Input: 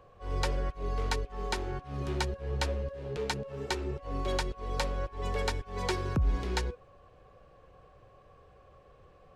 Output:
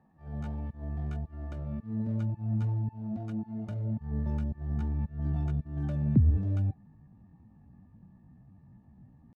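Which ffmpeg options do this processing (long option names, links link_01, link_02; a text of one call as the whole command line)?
ffmpeg -i in.wav -af "asubboost=boost=5:cutoff=150,bandpass=frequency=140:width_type=q:width=1.2:csg=0,asetrate=70004,aresample=44100,atempo=0.629961" out.wav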